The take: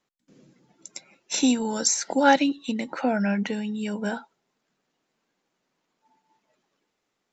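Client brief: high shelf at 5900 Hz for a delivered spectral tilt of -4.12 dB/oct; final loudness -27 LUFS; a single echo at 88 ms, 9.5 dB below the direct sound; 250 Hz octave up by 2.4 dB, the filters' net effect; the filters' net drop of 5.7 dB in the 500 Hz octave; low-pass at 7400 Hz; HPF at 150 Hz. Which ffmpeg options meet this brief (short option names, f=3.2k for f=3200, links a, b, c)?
-af "highpass=150,lowpass=7.4k,equalizer=f=250:t=o:g=5,equalizer=f=500:t=o:g=-7.5,highshelf=f=5.9k:g=-7,aecho=1:1:88:0.335,volume=-3dB"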